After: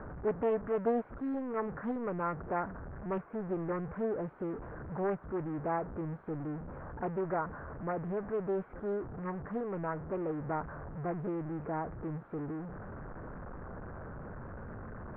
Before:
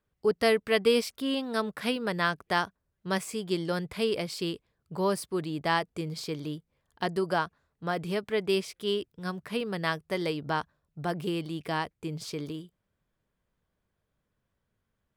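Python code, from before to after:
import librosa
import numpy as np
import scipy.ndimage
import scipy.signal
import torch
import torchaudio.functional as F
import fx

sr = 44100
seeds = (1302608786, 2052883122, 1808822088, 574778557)

y = x + 0.5 * 10.0 ** (-28.5 / 20.0) * np.sign(x)
y = scipy.signal.sosfilt(scipy.signal.ellip(4, 1.0, 70, 1500.0, 'lowpass', fs=sr, output='sos'), y)
y = fx.doppler_dist(y, sr, depth_ms=0.41)
y = F.gain(torch.from_numpy(y), -7.5).numpy()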